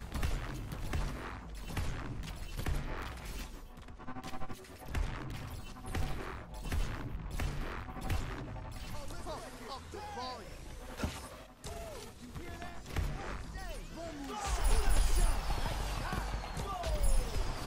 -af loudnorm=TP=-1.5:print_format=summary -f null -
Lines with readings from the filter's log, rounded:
Input Integrated:    -39.6 LUFS
Input True Peak:     -18.9 dBTP
Input LRA:             7.4 LU
Input Threshold:     -49.7 LUFS